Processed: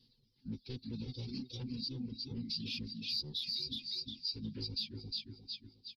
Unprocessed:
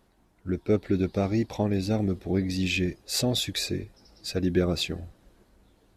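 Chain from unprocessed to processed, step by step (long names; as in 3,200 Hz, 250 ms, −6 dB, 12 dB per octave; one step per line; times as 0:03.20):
high-pass filter 83 Hz 6 dB per octave
comb filter 4.8 ms, depth 87%
on a send: repeating echo 358 ms, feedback 36%, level −6 dB
on the sum: soft clipping −22.5 dBFS, distortion −9 dB
Butterworth band-reject 1,100 Hz, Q 2.2
phase-vocoder pitch shift with formants kept −9 semitones
low-shelf EQ 360 Hz −3 dB
reverb reduction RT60 1.8 s
drawn EQ curve 250 Hz 0 dB, 380 Hz −14 dB, 590 Hz −16 dB, 1,100 Hz −19 dB, 1,900 Hz −19 dB, 2,700 Hz −4 dB, 4,800 Hz +14 dB, 7,600 Hz −28 dB, 11,000 Hz −11 dB
in parallel at −1 dB: brickwall limiter −22.5 dBFS, peak gain reduction 11 dB
on the sum: downward compressor 2 to 1, threshold −35 dBFS, peak gain reduction 10.5 dB
level −7.5 dB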